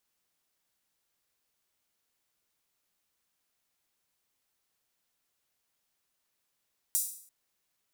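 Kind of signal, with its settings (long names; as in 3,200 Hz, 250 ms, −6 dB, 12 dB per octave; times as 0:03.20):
open synth hi-hat length 0.34 s, high-pass 8,000 Hz, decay 0.56 s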